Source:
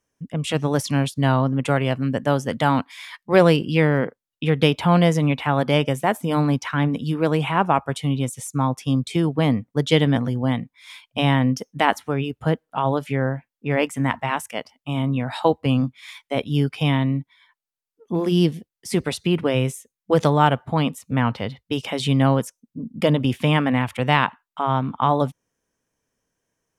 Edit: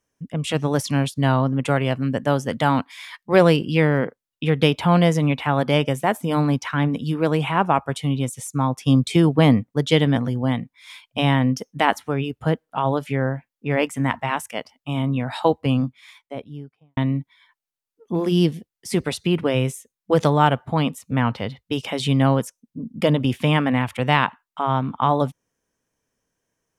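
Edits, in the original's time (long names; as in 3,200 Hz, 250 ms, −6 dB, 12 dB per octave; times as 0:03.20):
0:08.86–0:09.63: clip gain +4.5 dB
0:15.55–0:16.97: fade out and dull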